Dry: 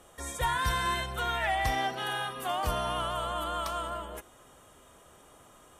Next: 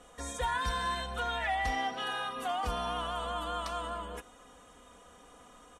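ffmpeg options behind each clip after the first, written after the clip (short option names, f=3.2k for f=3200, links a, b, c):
-filter_complex "[0:a]lowpass=8k,aecho=1:1:4.1:0.66,asplit=2[a][b];[b]acompressor=threshold=-34dB:ratio=6,volume=3dB[c];[a][c]amix=inputs=2:normalize=0,volume=-8.5dB"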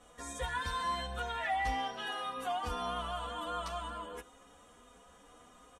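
-filter_complex "[0:a]asplit=2[a][b];[b]adelay=10.4,afreqshift=1.5[c];[a][c]amix=inputs=2:normalize=1"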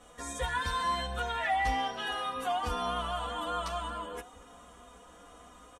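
-filter_complex "[0:a]asplit=2[a][b];[b]adelay=1691,volume=-21dB,highshelf=f=4k:g=-38[c];[a][c]amix=inputs=2:normalize=0,volume=4dB"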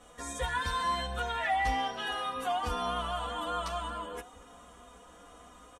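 -af anull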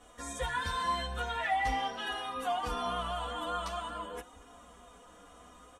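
-af "flanger=delay=2.8:depth=9.5:regen=-52:speed=0.45:shape=sinusoidal,volume=2.5dB"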